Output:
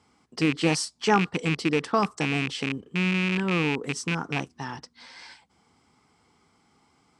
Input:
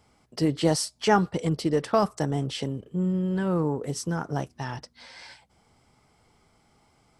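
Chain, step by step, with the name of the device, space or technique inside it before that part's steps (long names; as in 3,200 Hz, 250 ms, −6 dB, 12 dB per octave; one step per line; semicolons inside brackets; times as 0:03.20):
car door speaker with a rattle (loose part that buzzes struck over −27 dBFS, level −17 dBFS; loudspeaker in its box 91–9,200 Hz, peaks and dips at 120 Hz −7 dB, 270 Hz +3 dB, 600 Hz −9 dB, 1,100 Hz +3 dB)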